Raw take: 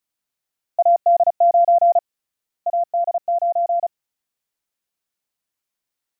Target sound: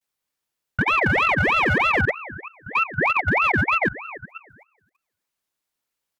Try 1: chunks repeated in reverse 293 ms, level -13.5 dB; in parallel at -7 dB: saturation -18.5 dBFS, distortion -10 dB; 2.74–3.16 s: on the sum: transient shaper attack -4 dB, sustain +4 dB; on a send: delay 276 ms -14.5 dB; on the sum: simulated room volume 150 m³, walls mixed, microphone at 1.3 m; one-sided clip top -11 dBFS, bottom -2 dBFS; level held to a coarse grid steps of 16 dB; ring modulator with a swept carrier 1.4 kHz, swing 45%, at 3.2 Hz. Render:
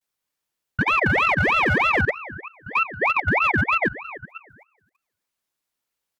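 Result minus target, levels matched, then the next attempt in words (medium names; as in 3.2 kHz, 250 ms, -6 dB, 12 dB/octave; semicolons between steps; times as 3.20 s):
saturation: distortion +9 dB
chunks repeated in reverse 293 ms, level -13.5 dB; in parallel at -7 dB: saturation -10.5 dBFS, distortion -19 dB; 2.74–3.16 s: on the sum: transient shaper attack -4 dB, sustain +4 dB; on a send: delay 276 ms -14.5 dB; on the sum: simulated room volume 150 m³, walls mixed, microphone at 1.3 m; one-sided clip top -11 dBFS, bottom -2 dBFS; level held to a coarse grid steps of 16 dB; ring modulator with a swept carrier 1.4 kHz, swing 45%, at 3.2 Hz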